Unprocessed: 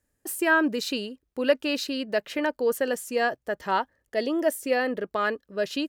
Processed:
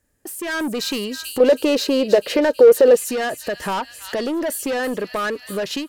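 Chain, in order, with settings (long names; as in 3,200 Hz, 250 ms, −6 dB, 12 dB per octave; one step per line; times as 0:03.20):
delay with a high-pass on its return 323 ms, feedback 71%, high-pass 4,000 Hz, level −11 dB
soft clipping −26.5 dBFS, distortion −7 dB
downward compressor 3 to 1, threshold −42 dBFS, peak gain reduction 10 dB
0:01.40–0:02.97: parametric band 480 Hz +14.5 dB 0.97 octaves
automatic gain control gain up to 10.5 dB
level +6.5 dB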